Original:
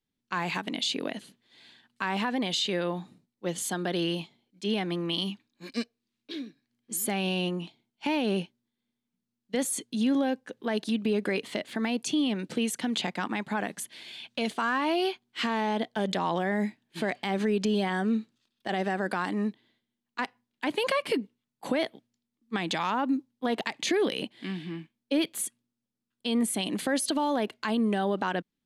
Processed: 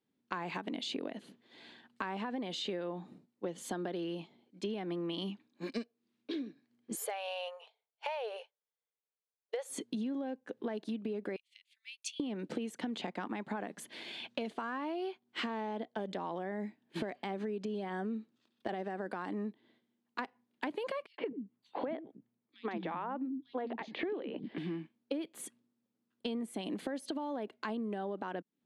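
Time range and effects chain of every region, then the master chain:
6.95–9.7 brick-wall FIR high-pass 420 Hz + upward expander, over -53 dBFS
11.36–12.2 Chebyshev high-pass 2400 Hz, order 4 + upward expander 2.5:1, over -48 dBFS
21.06–24.58 air absorption 310 m + three bands offset in time highs, mids, lows 0.12/0.21 s, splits 260/4100 Hz
whole clip: HPF 310 Hz 12 dB/oct; tilt -3.5 dB/oct; compressor 10:1, threshold -39 dBFS; gain +4 dB

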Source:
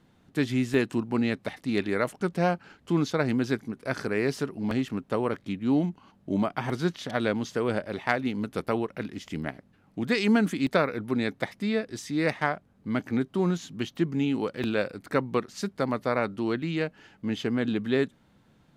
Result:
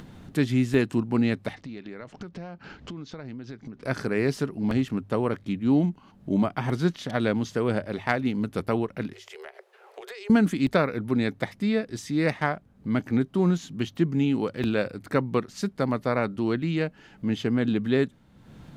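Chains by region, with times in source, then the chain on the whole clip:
1.55–3.83 LPF 6200 Hz 24 dB/oct + compressor 4:1, threshold -42 dBFS
9.13–10.3 Chebyshev high-pass 370 Hz, order 10 + compressor 4:1, threshold -45 dBFS + mismatched tape noise reduction decoder only
whole clip: low shelf 190 Hz +8 dB; notches 50/100 Hz; upward compressor, threshold -34 dBFS

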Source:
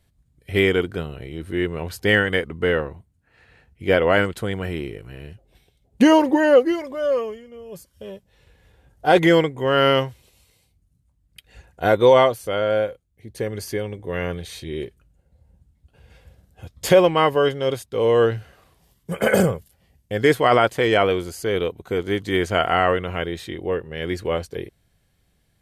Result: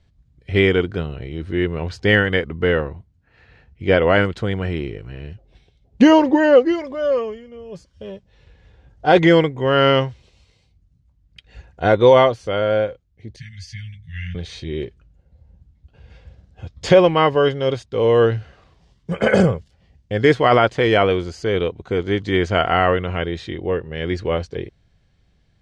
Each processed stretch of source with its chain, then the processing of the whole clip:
13.36–14.35 Chebyshev band-stop 160–1800 Hz, order 4 + bell 860 Hz -14.5 dB 0.32 oct + ensemble effect
whole clip: LPF 6100 Hz 24 dB/oct; low shelf 170 Hz +5.5 dB; gain +1.5 dB

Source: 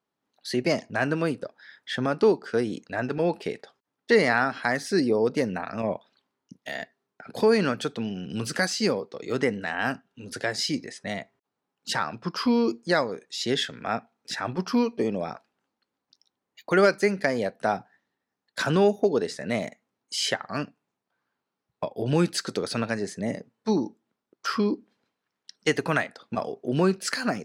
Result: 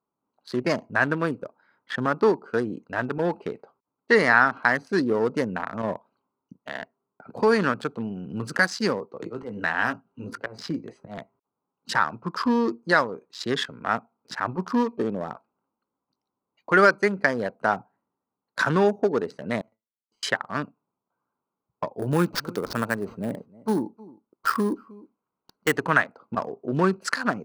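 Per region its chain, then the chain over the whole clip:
9.21–11.18 auto swell 0.255 s + doubler 18 ms -7.5 dB + three-band squash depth 70%
19.61–20.23 compressor 16:1, threshold -41 dBFS + resonator 110 Hz, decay 0.21 s, mix 90% + power-law curve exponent 1.4
21.99–25.77 sample-rate reducer 10000 Hz + echo 0.312 s -21.5 dB
whole clip: Wiener smoothing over 25 samples; band shelf 1300 Hz +8 dB 1.2 oct

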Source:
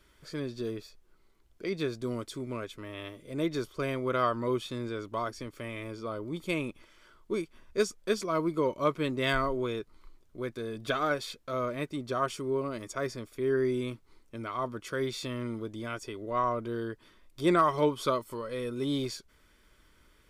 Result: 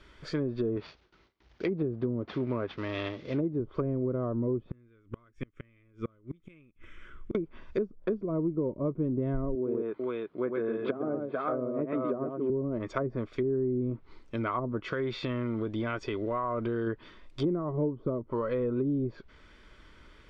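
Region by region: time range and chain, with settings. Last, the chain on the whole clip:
0.76–3.6 CVSD 32 kbps + HPF 42 Hz 24 dB/oct + gate with hold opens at -60 dBFS, closes at -67 dBFS
4.71–7.35 low shelf 120 Hz +10 dB + fixed phaser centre 1900 Hz, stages 4 + flipped gate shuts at -30 dBFS, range -33 dB
9.55–12.5 HPF 230 Hz + air absorption 340 m + tapped delay 0.11/0.443 s -4.5/-7 dB
14.82–16.87 block floating point 7-bit + compressor 5:1, threshold -34 dBFS
whole clip: treble ducked by the level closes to 340 Hz, closed at -28.5 dBFS; LPF 4200 Hz 12 dB/oct; compressor, threshold -34 dBFS; gain +8 dB

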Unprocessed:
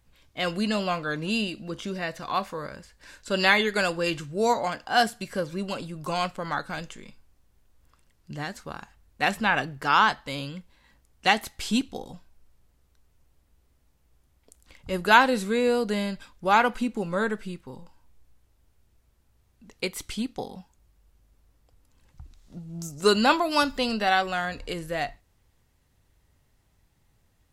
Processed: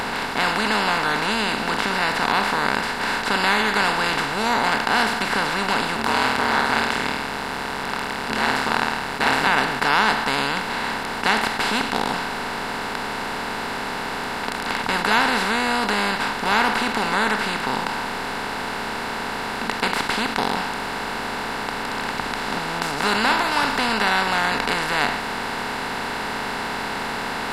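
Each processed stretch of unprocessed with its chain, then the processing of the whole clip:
5.96–9.47 flutter echo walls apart 4.4 m, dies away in 0.34 s + ring modulator 69 Hz
whole clip: per-bin compression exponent 0.2; dynamic EQ 480 Hz, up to -6 dB, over -26 dBFS, Q 1.1; gain -6 dB

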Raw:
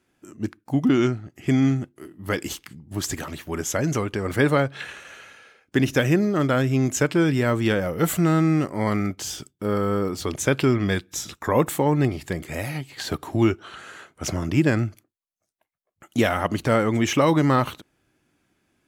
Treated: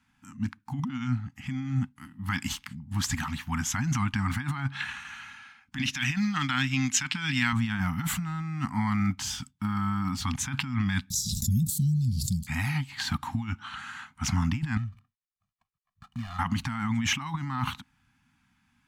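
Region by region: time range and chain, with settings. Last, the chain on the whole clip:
5.78–7.53 weighting filter D + upward expander, over -29 dBFS
11.1–12.47 Chebyshev band-stop 200–4200 Hz, order 4 + high shelf 6900 Hz +8 dB + backwards sustainer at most 21 dB/s
14.77–16.39 median filter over 25 samples + comb 1.7 ms, depth 97% + compressor 3:1, threshold -37 dBFS
whole clip: LPF 3800 Hz 6 dB/oct; negative-ratio compressor -25 dBFS, ratio -1; elliptic band-stop 250–840 Hz, stop band 40 dB

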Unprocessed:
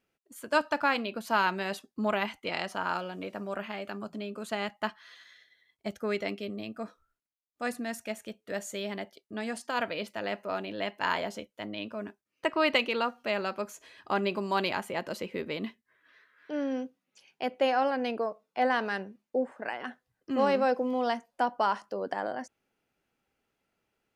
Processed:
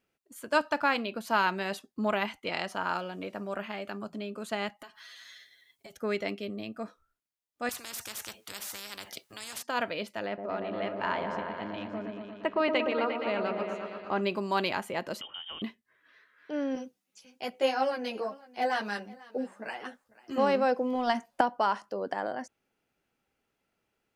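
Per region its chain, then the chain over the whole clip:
4.79–5.97 high shelf 4400 Hz +12 dB + comb 7.3 ms, depth 88% + compressor 8:1, threshold -45 dBFS
7.69–9.63 HPF 93 Hz + spectral compressor 10:1
10.26–14.21 tape spacing loss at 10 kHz 21 dB + repeats that get brighter 0.117 s, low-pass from 750 Hz, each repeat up 1 oct, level -3 dB
15.21–15.62 compressor 3:1, threshold -39 dBFS + inverted band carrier 3400 Hz
16.75–20.38 tone controls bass +1 dB, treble +11 dB + echo 0.494 s -21 dB + ensemble effect
20.95–21.41 bell 480 Hz -8.5 dB 0.23 oct + transient shaper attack +11 dB, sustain +6 dB
whole clip: dry

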